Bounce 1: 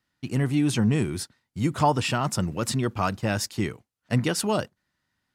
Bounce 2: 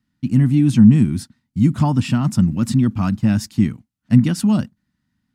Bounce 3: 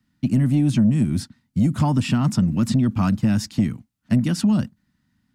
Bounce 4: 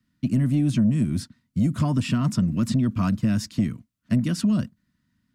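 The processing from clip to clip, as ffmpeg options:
-af "lowshelf=f=320:t=q:w=3:g=10,volume=0.794"
-filter_complex "[0:a]acrossover=split=160|7000[s0][s1][s2];[s0]acompressor=threshold=0.0501:ratio=4[s3];[s1]acompressor=threshold=0.0794:ratio=4[s4];[s2]acompressor=threshold=0.00501:ratio=4[s5];[s3][s4][s5]amix=inputs=3:normalize=0,asoftclip=type=tanh:threshold=0.266,volume=1.5"
-af "asuperstop=centerf=820:order=8:qfactor=4.7,volume=0.708"

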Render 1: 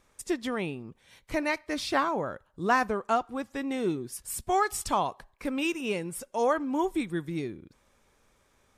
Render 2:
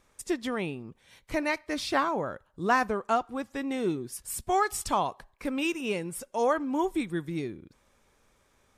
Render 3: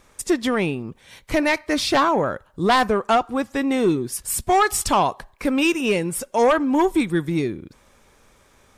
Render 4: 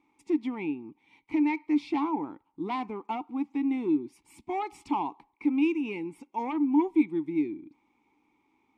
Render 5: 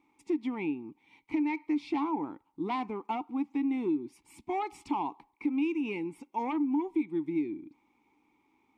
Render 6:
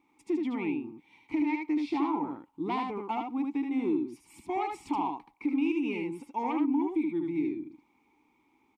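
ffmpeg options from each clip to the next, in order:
-af anull
-af "aeval=exprs='0.282*sin(PI/2*2.24*val(0)/0.282)':c=same"
-filter_complex "[0:a]asplit=3[s0][s1][s2];[s0]bandpass=f=300:t=q:w=8,volume=1[s3];[s1]bandpass=f=870:t=q:w=8,volume=0.501[s4];[s2]bandpass=f=2240:t=q:w=8,volume=0.355[s5];[s3][s4][s5]amix=inputs=3:normalize=0"
-af "acompressor=threshold=0.0501:ratio=5"
-af "aecho=1:1:76:0.668"

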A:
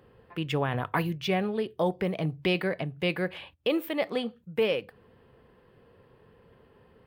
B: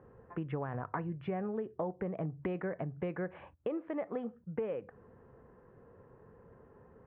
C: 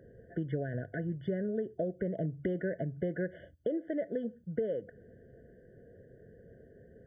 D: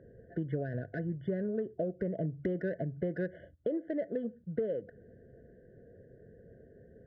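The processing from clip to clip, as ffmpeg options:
-af "lowpass=f=1600:w=0.5412,lowpass=f=1600:w=1.3066,acompressor=threshold=0.02:ratio=5"
-af "bandreject=f=2100:w=17,afftfilt=real='re*eq(mod(floor(b*sr/1024/730),2),0)':imag='im*eq(mod(floor(b*sr/1024/730),2),0)':win_size=1024:overlap=0.75,volume=1.41"
-af "adynamicsmooth=sensitivity=4.5:basefreq=2800"

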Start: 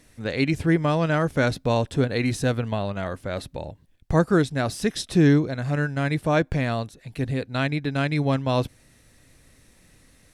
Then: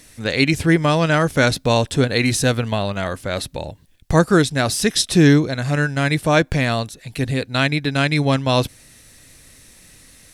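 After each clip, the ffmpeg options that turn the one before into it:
-af "highshelf=f=2300:g=9.5,volume=1.68"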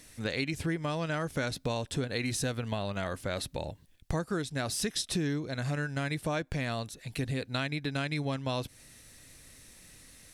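-af "acompressor=threshold=0.0794:ratio=6,volume=0.447"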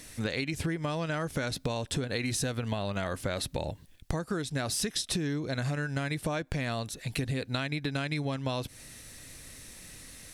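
-af "acompressor=threshold=0.02:ratio=6,volume=2"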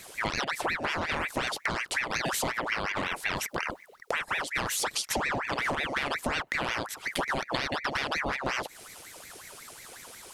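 -af "aeval=exprs='val(0)*sin(2*PI*1300*n/s+1300*0.7/5.5*sin(2*PI*5.5*n/s))':c=same,volume=1.58"

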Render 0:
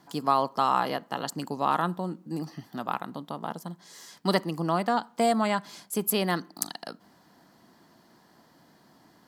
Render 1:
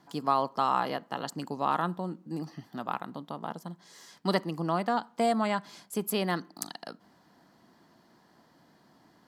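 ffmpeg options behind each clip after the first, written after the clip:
-af "highshelf=f=7500:g=-7,volume=0.75"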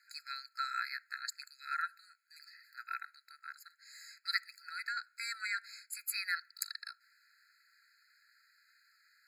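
-af "afftfilt=real='re*eq(mod(floor(b*sr/1024/1300),2),1)':imag='im*eq(mod(floor(b*sr/1024/1300),2),1)':win_size=1024:overlap=0.75,volume=1.26"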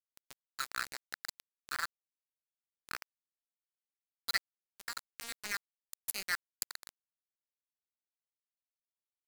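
-af "aeval=exprs='val(0)*gte(abs(val(0)),0.0266)':c=same,volume=1.26"

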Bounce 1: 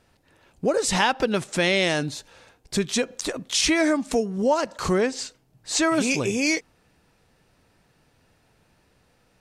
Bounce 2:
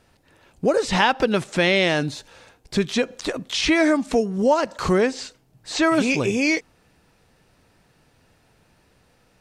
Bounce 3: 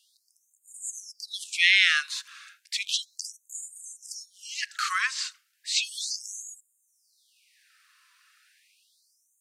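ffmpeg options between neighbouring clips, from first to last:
-filter_complex "[0:a]acrossover=split=4600[s0][s1];[s1]acompressor=threshold=0.00794:ratio=4:attack=1:release=60[s2];[s0][s2]amix=inputs=2:normalize=0,volume=1.41"
-af "afftfilt=real='re*gte(b*sr/1024,980*pow(6800/980,0.5+0.5*sin(2*PI*0.34*pts/sr)))':imag='im*gte(b*sr/1024,980*pow(6800/980,0.5+0.5*sin(2*PI*0.34*pts/sr)))':win_size=1024:overlap=0.75,volume=1.41"

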